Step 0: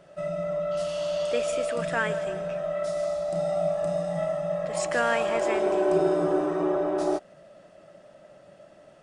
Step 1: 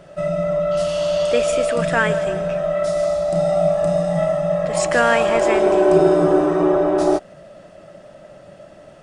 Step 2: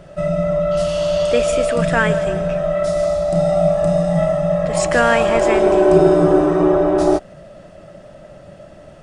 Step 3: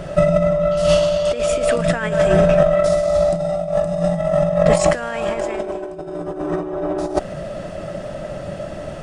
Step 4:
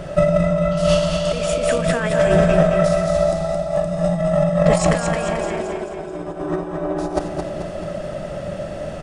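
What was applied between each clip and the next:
low shelf 120 Hz +8 dB; gain +8.5 dB
low shelf 130 Hz +10.5 dB; gain +1 dB
negative-ratio compressor -21 dBFS, ratio -0.5; gain +4.5 dB
feedback echo 0.218 s, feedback 50%, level -5 dB; gain -1 dB

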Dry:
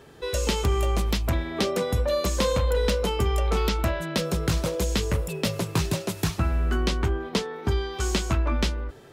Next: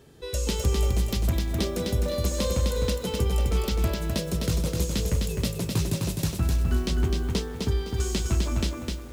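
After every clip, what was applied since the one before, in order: bell 1200 Hz -9.5 dB 3 oct; lo-fi delay 0.256 s, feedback 35%, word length 8-bit, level -3.5 dB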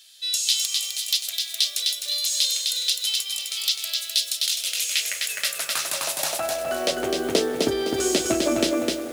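thirty-one-band EQ 200 Hz -7 dB, 400 Hz -7 dB, 630 Hz +9 dB, 1000 Hz -9 dB, 10000 Hz +4 dB; in parallel at +1 dB: limiter -21.5 dBFS, peak gain reduction 8 dB; on the sum: high-pass sweep 3700 Hz -> 340 Hz, 4.4–7.45; gain +3.5 dB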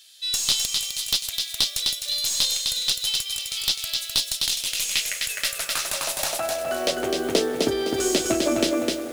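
tracing distortion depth 0.023 ms

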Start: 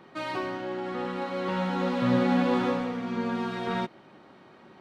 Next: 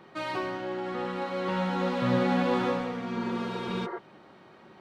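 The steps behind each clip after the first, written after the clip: spectral repair 3.21–3.95, 290–2200 Hz before; bell 260 Hz -6 dB 0.2 oct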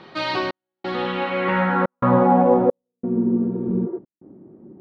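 low-pass sweep 4400 Hz -> 300 Hz, 0.86–3.26; step gate "xxx..xxxxxx.x" 89 bpm -60 dB; gain +7.5 dB

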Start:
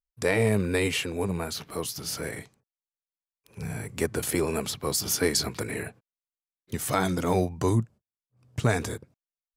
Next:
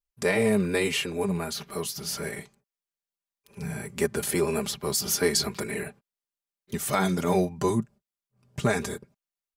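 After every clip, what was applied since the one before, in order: comb 5 ms, depth 68%; gain -1 dB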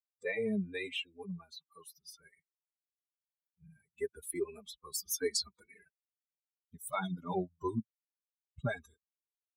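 per-bin expansion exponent 3; gain -5 dB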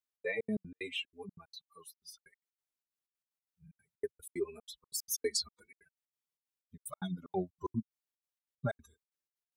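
step gate "xx.xx.x.x.x" 186 bpm -60 dB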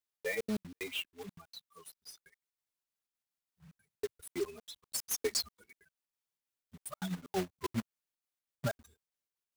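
block floating point 3-bit

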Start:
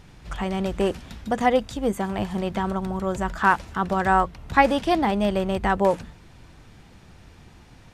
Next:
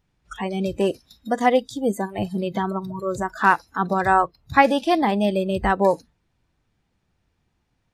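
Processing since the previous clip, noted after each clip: spectral noise reduction 24 dB; gain +2 dB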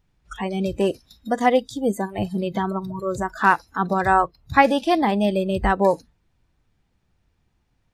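low shelf 61 Hz +8 dB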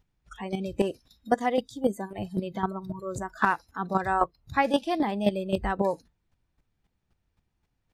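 chopper 3.8 Hz, depth 65%, duty 10%

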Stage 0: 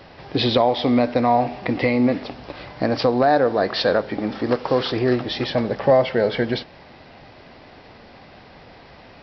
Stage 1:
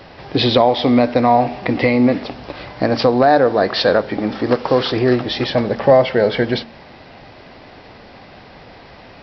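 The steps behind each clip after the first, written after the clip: de-hum 76.13 Hz, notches 3; gain +4.5 dB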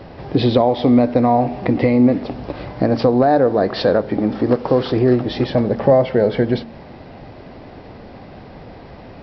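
tilt shelf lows +6.5 dB, about 890 Hz; in parallel at +1 dB: compressor, threshold -18 dBFS, peak gain reduction 13.5 dB; on the sum: gain -6.5 dB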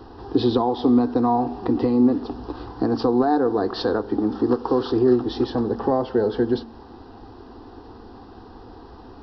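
fixed phaser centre 590 Hz, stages 6; gain -1 dB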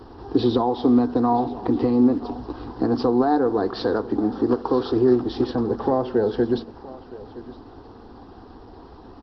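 echo 0.968 s -18 dB; Opus 16 kbps 48000 Hz

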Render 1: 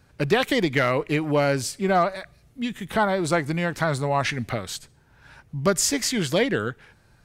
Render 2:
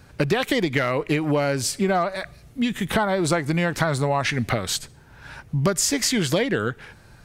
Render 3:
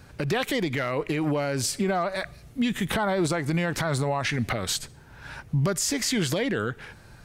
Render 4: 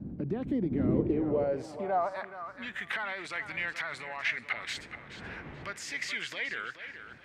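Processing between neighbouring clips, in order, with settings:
compressor, threshold -27 dBFS, peak gain reduction 12 dB; gain +8.5 dB
limiter -17 dBFS, peak gain reduction 10 dB
wind noise 120 Hz -23 dBFS; tape echo 0.427 s, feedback 30%, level -10 dB, low-pass 4600 Hz; band-pass sweep 250 Hz -> 2100 Hz, 0.67–3.06; gain +1 dB

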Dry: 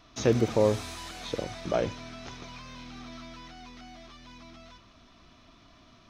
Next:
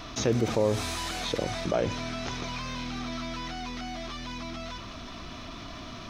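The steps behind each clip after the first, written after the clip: fast leveller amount 50%; gain -3.5 dB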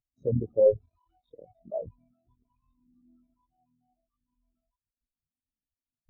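cycle switcher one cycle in 3, muted; spectral expander 4:1; gain +2.5 dB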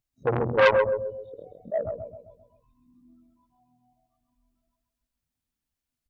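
on a send: feedback echo 0.131 s, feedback 46%, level -5.5 dB; on the sum: core saturation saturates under 1600 Hz; gain +6 dB

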